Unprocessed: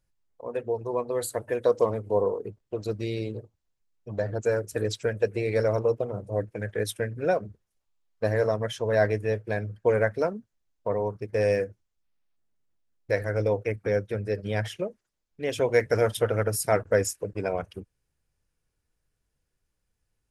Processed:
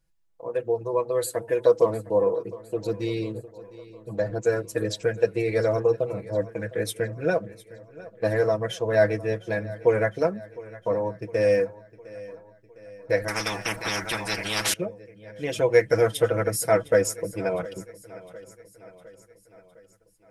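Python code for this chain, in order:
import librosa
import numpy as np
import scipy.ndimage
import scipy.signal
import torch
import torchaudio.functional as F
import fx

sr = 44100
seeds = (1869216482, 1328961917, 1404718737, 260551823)

y = x + 0.74 * np.pad(x, (int(6.1 * sr / 1000.0), 0))[:len(x)]
y = fx.echo_feedback(y, sr, ms=708, feedback_pct=55, wet_db=-19)
y = fx.spectral_comp(y, sr, ratio=10.0, at=(13.28, 14.74))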